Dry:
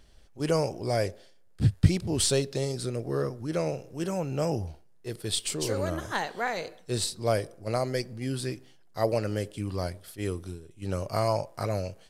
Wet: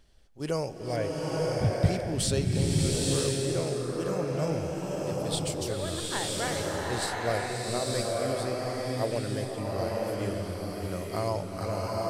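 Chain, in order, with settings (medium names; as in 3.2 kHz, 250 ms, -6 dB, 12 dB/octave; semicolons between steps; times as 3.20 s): 0.96–1.76 s: steep low-pass 3.6 kHz 72 dB/octave; swelling reverb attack 950 ms, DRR -3.5 dB; trim -4.5 dB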